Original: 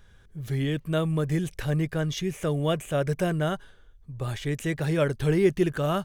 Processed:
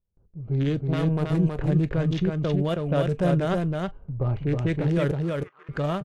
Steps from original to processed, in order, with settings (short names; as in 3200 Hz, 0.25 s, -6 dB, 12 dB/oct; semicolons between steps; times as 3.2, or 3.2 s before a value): Wiener smoothing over 25 samples; low-pass opened by the level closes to 820 Hz, open at -19.5 dBFS; gate with hold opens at -46 dBFS; AGC gain up to 13 dB; limiter -11 dBFS, peak gain reduction 9 dB; 0.79–1.33 power-law curve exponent 2; 2.23–2.86 level quantiser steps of 19 dB; 5.11–5.69 ladder band-pass 1300 Hz, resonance 70%; echo 0.321 s -3.5 dB; reverb, pre-delay 3 ms, DRR 14 dB; gain -5.5 dB